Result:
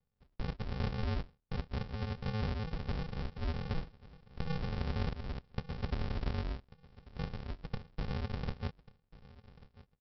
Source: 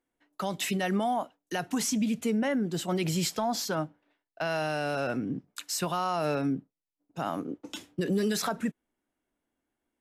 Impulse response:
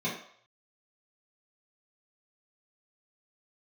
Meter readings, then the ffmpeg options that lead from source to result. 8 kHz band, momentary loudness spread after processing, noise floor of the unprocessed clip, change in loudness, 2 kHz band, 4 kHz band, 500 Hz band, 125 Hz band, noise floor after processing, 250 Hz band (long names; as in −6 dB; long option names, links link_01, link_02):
below −30 dB, 15 LU, below −85 dBFS, −9.0 dB, −11.5 dB, −12.5 dB, −13.5 dB, 0.0 dB, −77 dBFS, −12.5 dB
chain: -af "highpass=frequency=870:poles=1,acompressor=threshold=-45dB:ratio=2.5,aresample=11025,acrusher=samples=34:mix=1:aa=0.000001,aresample=44100,aecho=1:1:1141|2282:0.106|0.0286,volume=9dB"